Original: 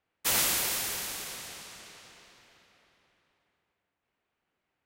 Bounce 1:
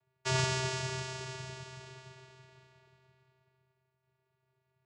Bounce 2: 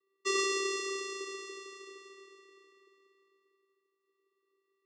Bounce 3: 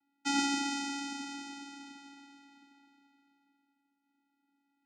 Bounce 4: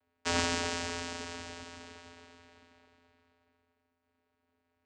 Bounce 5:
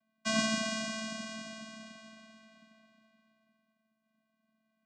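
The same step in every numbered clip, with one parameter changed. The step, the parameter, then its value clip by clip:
channel vocoder, frequency: 130, 390, 280, 86, 220 Hertz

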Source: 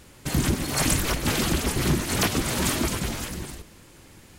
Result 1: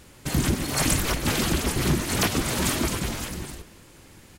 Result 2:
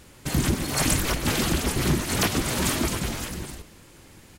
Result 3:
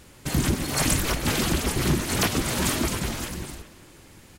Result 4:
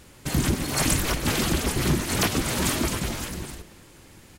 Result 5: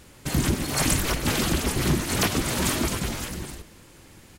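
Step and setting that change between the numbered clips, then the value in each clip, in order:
far-end echo of a speakerphone, delay time: 180, 120, 390, 270, 80 milliseconds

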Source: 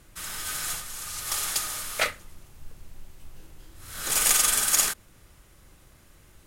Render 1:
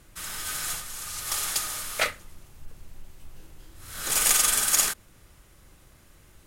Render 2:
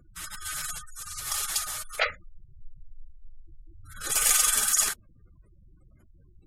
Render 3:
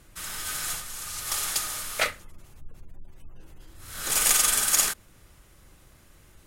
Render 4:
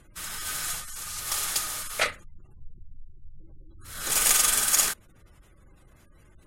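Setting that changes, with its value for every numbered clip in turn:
gate on every frequency bin, under each frame's peak: −55, −15, −40, −25 decibels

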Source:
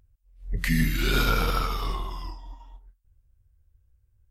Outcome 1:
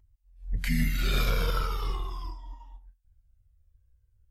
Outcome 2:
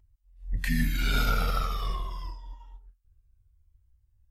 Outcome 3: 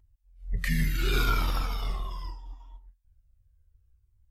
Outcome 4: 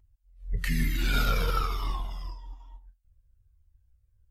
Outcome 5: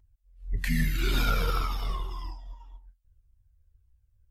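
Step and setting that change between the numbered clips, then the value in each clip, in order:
flanger whose copies keep moving one way, speed: 0.4, 0.26, 0.72, 1.1, 1.8 Hertz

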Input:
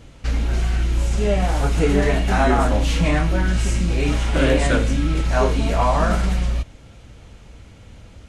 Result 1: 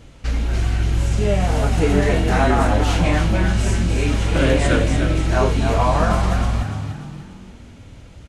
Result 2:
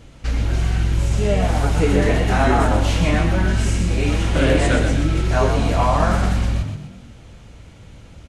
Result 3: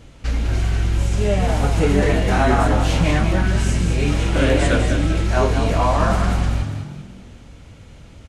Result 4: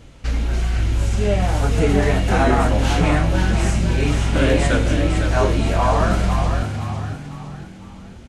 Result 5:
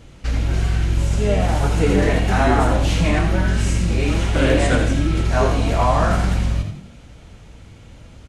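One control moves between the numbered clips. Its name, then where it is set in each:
echo with shifted repeats, delay time: 295, 124, 197, 506, 83 milliseconds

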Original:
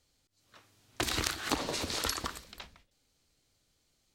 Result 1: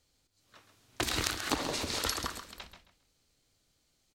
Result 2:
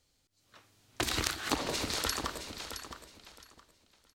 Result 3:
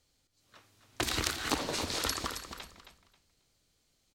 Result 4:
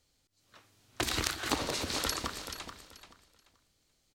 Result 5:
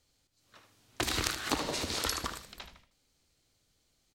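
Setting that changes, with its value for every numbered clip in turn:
repeating echo, delay time: 134, 667, 269, 432, 76 milliseconds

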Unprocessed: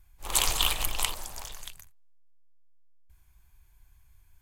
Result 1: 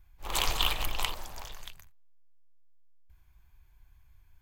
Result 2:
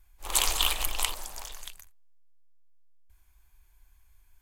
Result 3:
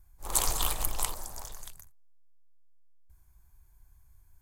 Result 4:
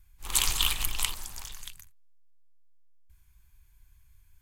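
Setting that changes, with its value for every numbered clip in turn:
parametric band, centre frequency: 9,400, 120, 2,800, 590 Hertz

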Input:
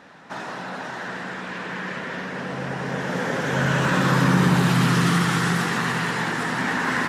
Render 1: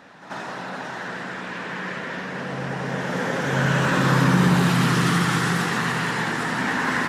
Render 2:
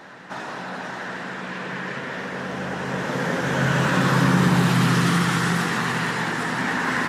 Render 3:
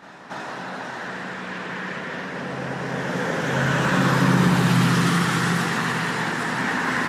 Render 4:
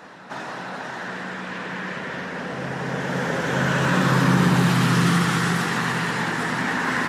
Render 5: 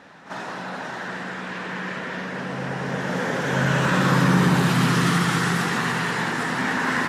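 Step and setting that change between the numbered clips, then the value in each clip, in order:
backwards echo, delay time: 90, 955, 277, 449, 43 milliseconds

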